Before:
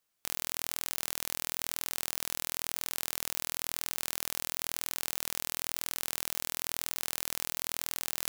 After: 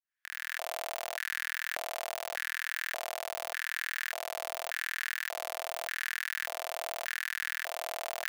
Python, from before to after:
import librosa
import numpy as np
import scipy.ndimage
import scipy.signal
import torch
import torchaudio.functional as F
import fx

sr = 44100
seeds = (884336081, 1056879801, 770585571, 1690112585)

p1 = fx.fade_in_head(x, sr, length_s=0.59)
p2 = p1 + fx.echo_single(p1, sr, ms=79, db=-6.5, dry=0)
p3 = fx.filter_lfo_highpass(p2, sr, shape='square', hz=0.85, low_hz=650.0, high_hz=1700.0, q=6.6)
y = fx.bass_treble(p3, sr, bass_db=-6, treble_db=-10)